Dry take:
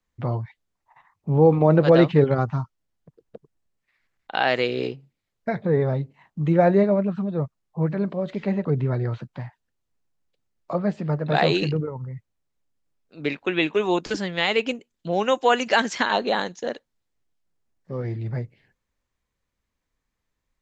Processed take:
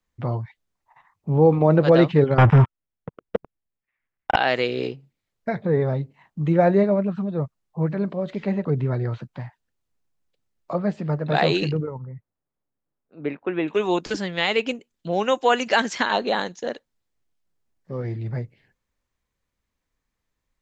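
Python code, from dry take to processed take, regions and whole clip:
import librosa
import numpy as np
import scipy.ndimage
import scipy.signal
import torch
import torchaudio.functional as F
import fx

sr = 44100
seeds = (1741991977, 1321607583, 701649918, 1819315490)

y = fx.chain(x, sr, fx.leveller(passes=5),
    fx.savgol(points=25), at=(2.38, 4.36))
y = fx.chain(y, sr, fx.lowpass(hz=1400.0, slope=12),
    fx.low_shelf(hz=74.0, db=-10.5), at=(11.98, 13.68))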